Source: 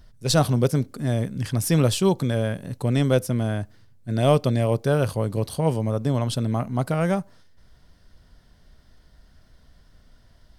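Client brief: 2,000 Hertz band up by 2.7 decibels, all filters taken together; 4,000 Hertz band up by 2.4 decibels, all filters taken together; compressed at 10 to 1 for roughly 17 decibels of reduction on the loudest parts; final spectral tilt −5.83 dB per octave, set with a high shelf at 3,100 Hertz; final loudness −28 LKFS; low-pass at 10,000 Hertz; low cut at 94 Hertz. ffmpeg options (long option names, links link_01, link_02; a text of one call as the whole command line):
ffmpeg -i in.wav -af "highpass=94,lowpass=10000,equalizer=frequency=2000:width_type=o:gain=4.5,highshelf=frequency=3100:gain=-6.5,equalizer=frequency=4000:width_type=o:gain=6.5,acompressor=threshold=-31dB:ratio=10,volume=8.5dB" out.wav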